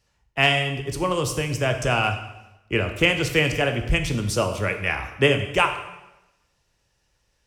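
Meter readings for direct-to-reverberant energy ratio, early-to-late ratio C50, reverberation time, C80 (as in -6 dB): 5.5 dB, 8.5 dB, 1.0 s, 10.5 dB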